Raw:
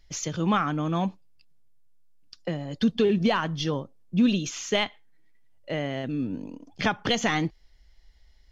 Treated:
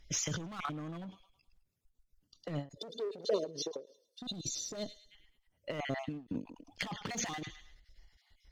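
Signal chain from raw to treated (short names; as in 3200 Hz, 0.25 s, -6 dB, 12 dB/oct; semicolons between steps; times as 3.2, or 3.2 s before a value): random spectral dropouts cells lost 32%; on a send: thin delay 0.107 s, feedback 35%, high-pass 2300 Hz, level -13 dB; on the sum: added harmonics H 4 -37 dB, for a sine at -12 dBFS; 2.69–5.11 spectral gain 680–3500 Hz -21 dB; overloaded stage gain 25.5 dB; negative-ratio compressor -33 dBFS, ratio -0.5; 2.77–4.17 resonant high-pass 440 Hz, resonance Q 4.9; ending taper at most 220 dB/s; gain -3.5 dB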